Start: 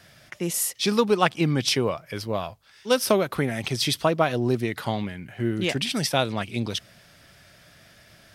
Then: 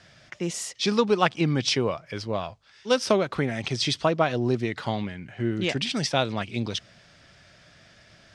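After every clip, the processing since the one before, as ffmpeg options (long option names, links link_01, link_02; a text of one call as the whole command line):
ffmpeg -i in.wav -af "lowpass=frequency=7300:width=0.5412,lowpass=frequency=7300:width=1.3066,volume=-1dB" out.wav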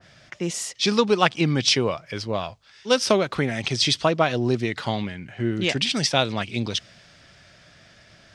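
ffmpeg -i in.wav -af "adynamicequalizer=threshold=0.0158:dfrequency=2000:dqfactor=0.7:tfrequency=2000:tqfactor=0.7:attack=5:release=100:ratio=0.375:range=2:mode=boostabove:tftype=highshelf,volume=2dB" out.wav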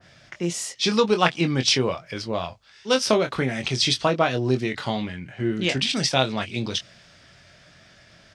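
ffmpeg -i in.wav -filter_complex "[0:a]asplit=2[link_01][link_02];[link_02]adelay=23,volume=-7.5dB[link_03];[link_01][link_03]amix=inputs=2:normalize=0,volume=-1dB" out.wav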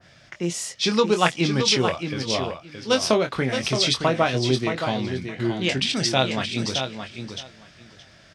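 ffmpeg -i in.wav -af "aecho=1:1:621|1242|1863:0.422|0.0675|0.0108" out.wav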